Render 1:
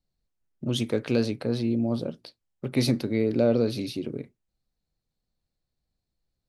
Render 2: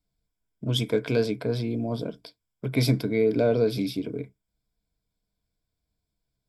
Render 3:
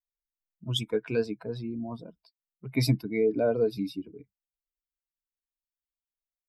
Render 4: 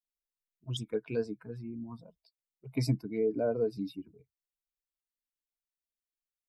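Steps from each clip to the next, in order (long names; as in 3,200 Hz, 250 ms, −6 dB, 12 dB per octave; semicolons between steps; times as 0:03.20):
EQ curve with evenly spaced ripples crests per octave 1.7, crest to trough 11 dB
spectral dynamics exaggerated over time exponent 2
phaser swept by the level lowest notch 150 Hz, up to 3,300 Hz, full sweep at −24.5 dBFS; level −4.5 dB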